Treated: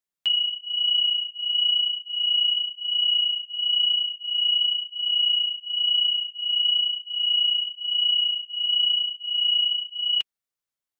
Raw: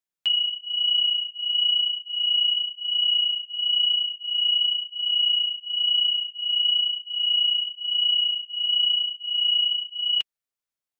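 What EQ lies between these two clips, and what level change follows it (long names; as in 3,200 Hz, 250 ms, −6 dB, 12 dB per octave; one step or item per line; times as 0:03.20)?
notch filter 2,500 Hz, Q 26
0.0 dB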